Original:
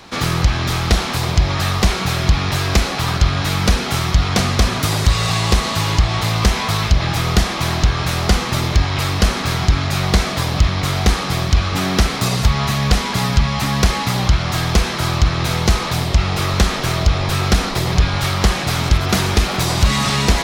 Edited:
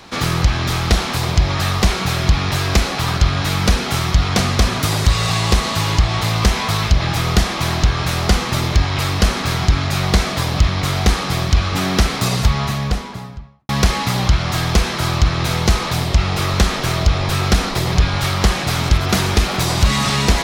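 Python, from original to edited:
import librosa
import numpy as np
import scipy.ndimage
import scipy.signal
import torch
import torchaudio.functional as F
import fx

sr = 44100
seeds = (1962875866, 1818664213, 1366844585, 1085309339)

y = fx.studio_fade_out(x, sr, start_s=12.35, length_s=1.34)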